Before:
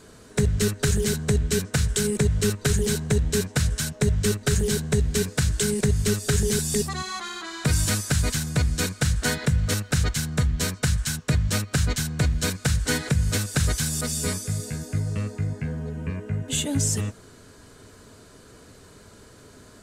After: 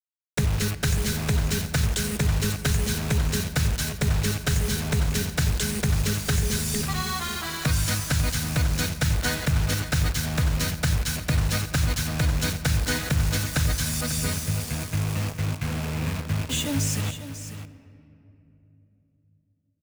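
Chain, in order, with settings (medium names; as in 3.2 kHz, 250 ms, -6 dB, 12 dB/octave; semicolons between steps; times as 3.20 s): rattle on loud lows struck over -33 dBFS, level -32 dBFS; graphic EQ with 31 bands 200 Hz -4 dB, 400 Hz -10 dB, 8 kHz -7 dB; in parallel at +1 dB: compression 16:1, threshold -30 dBFS, peak gain reduction 13.5 dB; on the sum: bit crusher 5-bit; delay 545 ms -11.5 dB; on a send at -14 dB: reverberation RT60 3.2 s, pre-delay 47 ms; on the sum: trim -3.5 dB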